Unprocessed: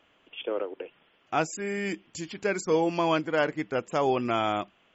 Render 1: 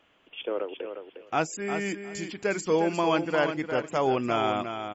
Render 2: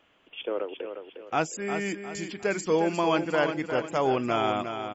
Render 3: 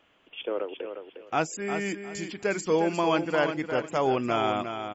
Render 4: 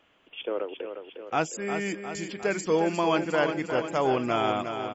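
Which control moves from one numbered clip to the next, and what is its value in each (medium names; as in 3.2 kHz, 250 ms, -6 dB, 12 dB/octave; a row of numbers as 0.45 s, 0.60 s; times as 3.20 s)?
feedback delay, feedback: 16%, 38%, 23%, 59%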